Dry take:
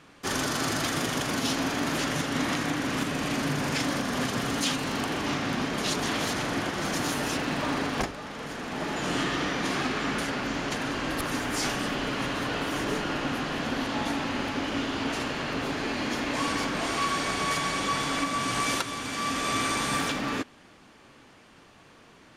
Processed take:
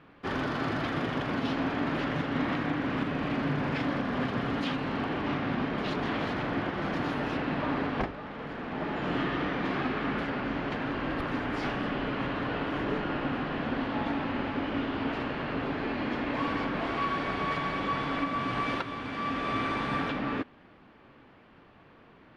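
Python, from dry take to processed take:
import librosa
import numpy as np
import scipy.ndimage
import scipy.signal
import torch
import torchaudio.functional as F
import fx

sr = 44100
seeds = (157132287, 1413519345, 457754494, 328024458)

y = fx.air_absorb(x, sr, metres=390.0)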